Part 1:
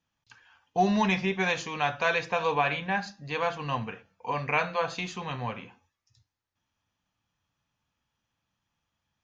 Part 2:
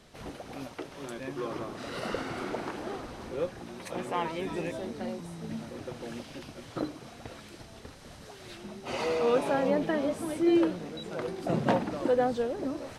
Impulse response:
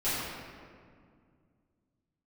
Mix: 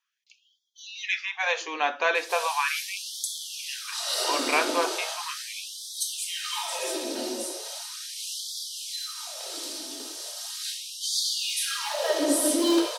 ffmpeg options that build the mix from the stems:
-filter_complex "[0:a]volume=2dB[a];[1:a]aecho=1:1:3.2:0.42,volume=18dB,asoftclip=hard,volume=-18dB,aexciter=amount=8.2:drive=4:freq=3.2k,adelay=2150,volume=-3.5dB,asplit=2[b][c];[c]volume=-5.5dB[d];[2:a]atrim=start_sample=2205[e];[d][e]afir=irnorm=-1:irlink=0[f];[a][b][f]amix=inputs=3:normalize=0,afftfilt=real='re*gte(b*sr/1024,220*pow(3200/220,0.5+0.5*sin(2*PI*0.38*pts/sr)))':imag='im*gte(b*sr/1024,220*pow(3200/220,0.5+0.5*sin(2*PI*0.38*pts/sr)))':win_size=1024:overlap=0.75"

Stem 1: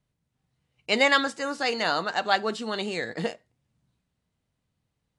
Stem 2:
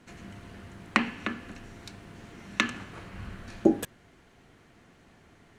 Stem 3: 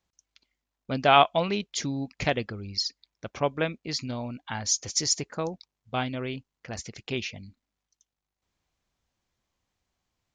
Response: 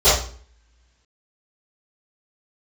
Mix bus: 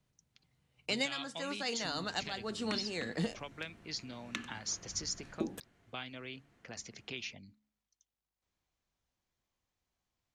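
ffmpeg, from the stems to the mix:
-filter_complex "[0:a]volume=-0.5dB[a];[1:a]adelay=1750,volume=-11.5dB[b];[2:a]bandreject=f=70.85:t=h:w=4,bandreject=f=141.7:t=h:w=4,bandreject=f=212.55:t=h:w=4,bandreject=f=283.4:t=h:w=4,acrossover=split=140|1400[c][d][e];[c]acompressor=threshold=-59dB:ratio=4[f];[d]acompressor=threshold=-40dB:ratio=4[g];[e]acompressor=threshold=-29dB:ratio=4[h];[f][g][h]amix=inputs=3:normalize=0,volume=-6.5dB,asplit=2[i][j];[j]apad=whole_len=228446[k];[a][k]sidechaincompress=threshold=-42dB:ratio=8:attack=6.9:release=433[l];[l][b][i]amix=inputs=3:normalize=0,acrossover=split=310|3000[m][n][o];[n]acompressor=threshold=-39dB:ratio=6[p];[m][p][o]amix=inputs=3:normalize=0"

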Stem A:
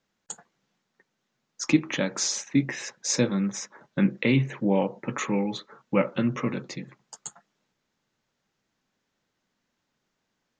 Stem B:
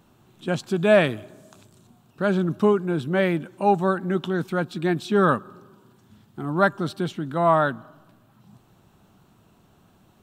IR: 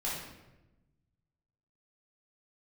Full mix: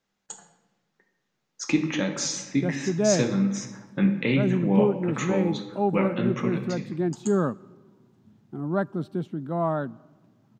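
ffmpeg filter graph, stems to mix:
-filter_complex "[0:a]volume=-4dB,asplit=2[a][b];[b]volume=-7dB[c];[1:a]highpass=130,tiltshelf=f=860:g=9,adelay=2150,volume=-9dB[d];[2:a]atrim=start_sample=2205[e];[c][e]afir=irnorm=-1:irlink=0[f];[a][d][f]amix=inputs=3:normalize=0"

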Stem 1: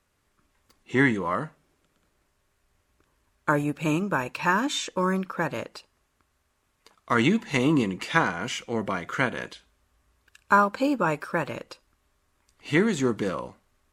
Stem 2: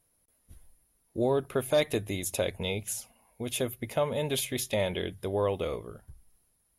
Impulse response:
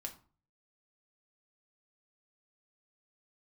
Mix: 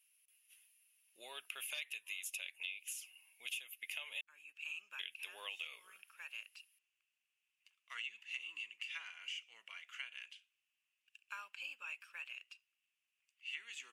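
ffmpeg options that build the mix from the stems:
-filter_complex "[0:a]adelay=800,volume=-17dB[a];[1:a]volume=-2dB,asplit=3[b][c][d];[b]atrim=end=4.21,asetpts=PTS-STARTPTS,afade=t=out:st=4.206:d=0.004:c=hsin[e];[c]atrim=start=4.21:end=4.99,asetpts=PTS-STARTPTS,volume=0[f];[d]atrim=start=4.99,asetpts=PTS-STARTPTS,afade=t=in:d=0.004:c=hsin[g];[e][f][g]concat=n=3:v=0:a=1,asplit=2[h][i];[i]apad=whole_len=649556[j];[a][j]sidechaincompress=threshold=-42dB:ratio=10:attack=26:release=556[k];[k][h]amix=inputs=2:normalize=0,highpass=f=2.7k:t=q:w=7.6,equalizer=f=4k:w=2.8:g=-7.5,acompressor=threshold=-41dB:ratio=8"

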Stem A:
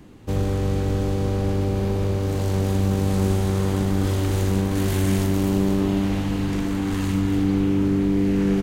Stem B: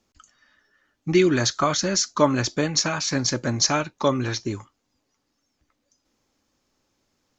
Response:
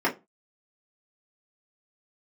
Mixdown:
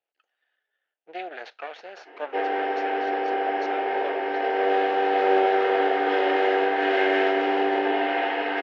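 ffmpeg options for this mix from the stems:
-filter_complex "[0:a]highpass=f=590:p=1,adelay=2050,volume=-2.5dB,asplit=2[a][b];[b]volume=-3.5dB[c];[1:a]aeval=exprs='max(val(0),0)':c=same,volume=-11.5dB,asplit=2[d][e];[e]apad=whole_len=470551[f];[a][f]sidechaincompress=threshold=-52dB:ratio=8:attack=16:release=149[g];[2:a]atrim=start_sample=2205[h];[c][h]afir=irnorm=-1:irlink=0[i];[g][d][i]amix=inputs=3:normalize=0,highpass=f=440:w=0.5412,highpass=f=440:w=1.3066,equalizer=f=470:t=q:w=4:g=4,equalizer=f=740:t=q:w=4:g=8,equalizer=f=1.1k:t=q:w=4:g=-9,equalizer=f=1.6k:t=q:w=4:g=5,equalizer=f=2.8k:t=q:w=4:g=5,lowpass=f=3.4k:w=0.5412,lowpass=f=3.4k:w=1.3066"

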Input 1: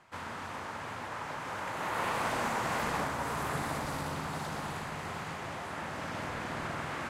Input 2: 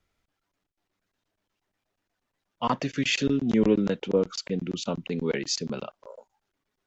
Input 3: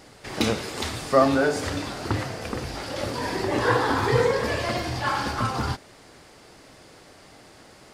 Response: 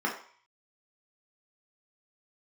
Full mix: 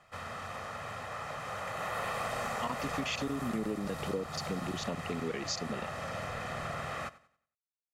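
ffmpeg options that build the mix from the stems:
-filter_complex "[0:a]aecho=1:1:1.6:0.65,volume=-2dB,asplit=2[a][b];[b]volume=-19dB[c];[1:a]volume=-4.5dB[d];[c]aecho=0:1:92|184|276|368|460:1|0.35|0.122|0.0429|0.015[e];[a][d][e]amix=inputs=3:normalize=0,acompressor=threshold=-31dB:ratio=6"

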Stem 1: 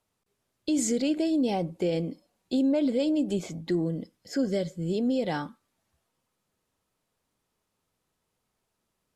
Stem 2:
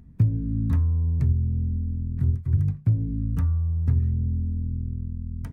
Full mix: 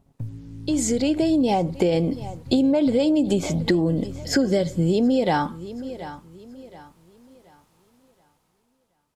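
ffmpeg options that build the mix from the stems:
-filter_complex "[0:a]dynaudnorm=f=290:g=9:m=14dB,volume=1dB,asplit=2[a][b];[b]volume=-21.5dB[c];[1:a]aeval=exprs='(tanh(5.62*val(0)+0.6)-tanh(0.6))/5.62':c=same,acrusher=bits=7:mix=0:aa=0.5,aecho=1:1:7.2:0.46,volume=-10.5dB,asplit=2[d][e];[e]volume=-9.5dB[f];[c][f]amix=inputs=2:normalize=0,aecho=0:1:726|1452|2178|2904|3630:1|0.34|0.116|0.0393|0.0134[g];[a][d][g]amix=inputs=3:normalize=0,equalizer=f=870:t=o:w=0.61:g=6,acompressor=threshold=-17dB:ratio=6"

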